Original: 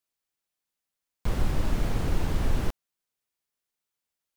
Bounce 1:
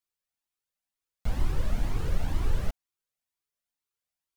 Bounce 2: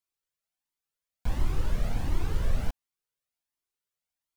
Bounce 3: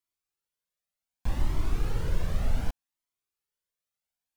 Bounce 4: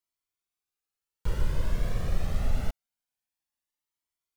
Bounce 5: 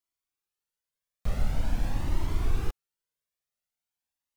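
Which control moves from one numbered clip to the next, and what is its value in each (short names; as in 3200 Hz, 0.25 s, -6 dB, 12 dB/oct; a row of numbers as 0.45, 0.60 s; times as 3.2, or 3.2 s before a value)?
cascading flanger, rate: 2.1, 1.4, 0.66, 0.25, 0.45 Hz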